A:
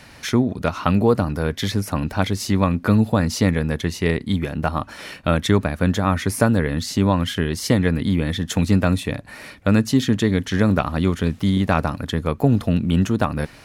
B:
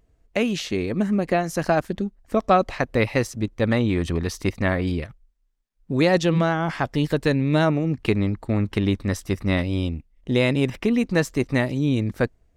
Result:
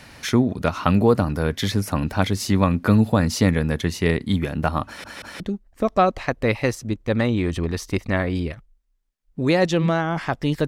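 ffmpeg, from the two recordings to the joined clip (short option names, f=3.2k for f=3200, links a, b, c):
-filter_complex "[0:a]apad=whole_dur=10.67,atrim=end=10.67,asplit=3[a][b][c];[a]atrim=end=5.042[d];[b]atrim=start=4.858:end=5.042[e];[c]atrim=start=4.858:end=5.042[f];[1:a]atrim=start=1.918:end=7.19[g];[d][e]acrossfade=d=0.004:c1=hsin:c2=hsin[h];[h][f]acrossfade=d=0.004:c1=hsin:c2=hsin[i];[i][g]acrossfade=d=0.004:c1=hsin:c2=hsin"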